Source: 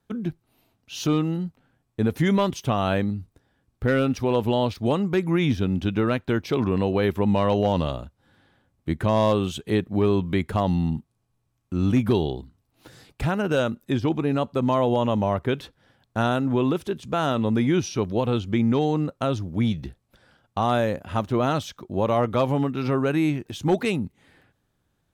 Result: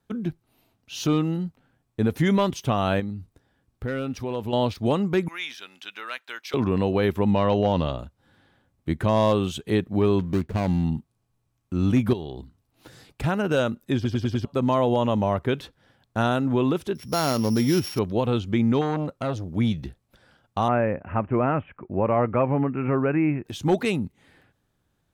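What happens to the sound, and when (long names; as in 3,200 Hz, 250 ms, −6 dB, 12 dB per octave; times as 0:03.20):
0:03.00–0:04.53: downward compressor 1.5 to 1, threshold −37 dBFS
0:05.28–0:06.54: high-pass filter 1,500 Hz
0:07.31–0:07.99: low-pass filter 5,600 Hz
0:10.19–0:10.84: running median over 41 samples
0:12.13–0:13.24: downward compressor, threshold −29 dBFS
0:13.95: stutter in place 0.10 s, 5 plays
0:16.95–0:17.99: samples sorted by size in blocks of 8 samples
0:18.81–0:19.55: saturating transformer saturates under 630 Hz
0:20.68–0:23.45: Butterworth low-pass 2,600 Hz 72 dB per octave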